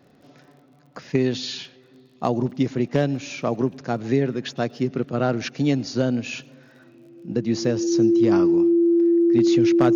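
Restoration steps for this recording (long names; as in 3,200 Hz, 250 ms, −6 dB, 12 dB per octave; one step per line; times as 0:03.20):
clipped peaks rebuilt −9 dBFS
click removal
notch filter 340 Hz, Q 30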